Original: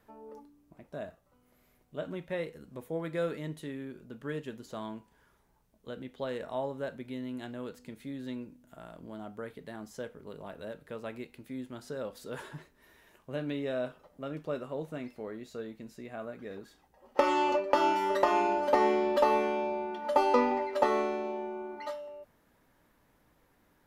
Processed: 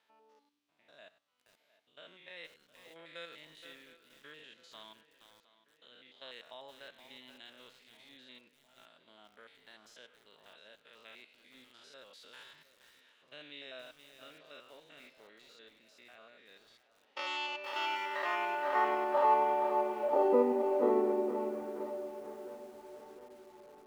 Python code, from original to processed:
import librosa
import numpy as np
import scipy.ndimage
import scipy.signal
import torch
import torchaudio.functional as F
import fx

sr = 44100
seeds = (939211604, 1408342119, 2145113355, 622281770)

y = fx.spec_steps(x, sr, hold_ms=100)
y = fx.filter_sweep_bandpass(y, sr, from_hz=3400.0, to_hz=350.0, start_s=17.49, end_s=20.56, q=1.8)
y = fx.echo_tape(y, sr, ms=710, feedback_pct=69, wet_db=-16, lp_hz=4300.0, drive_db=26.0, wow_cents=29)
y = fx.echo_crushed(y, sr, ms=472, feedback_pct=35, bits=10, wet_db=-8)
y = y * 10.0 ** (4.0 / 20.0)